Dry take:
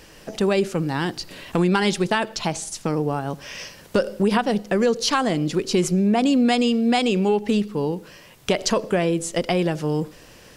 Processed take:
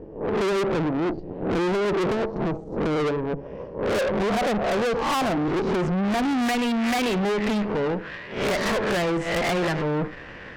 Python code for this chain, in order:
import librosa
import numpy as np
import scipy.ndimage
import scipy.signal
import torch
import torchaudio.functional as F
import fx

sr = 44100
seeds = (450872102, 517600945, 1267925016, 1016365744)

y = fx.spec_swells(x, sr, rise_s=0.41)
y = fx.filter_sweep_lowpass(y, sr, from_hz=430.0, to_hz=1900.0, start_s=3.4, end_s=6.71, q=2.4)
y = fx.tube_stage(y, sr, drive_db=31.0, bias=0.8)
y = y * librosa.db_to_amplitude(9.0)